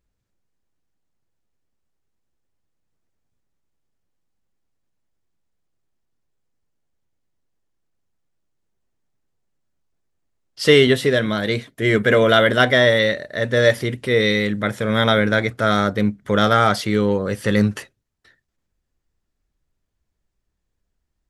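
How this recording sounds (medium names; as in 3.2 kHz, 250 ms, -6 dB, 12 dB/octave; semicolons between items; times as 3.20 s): noise floor -76 dBFS; spectral tilt -3.5 dB/octave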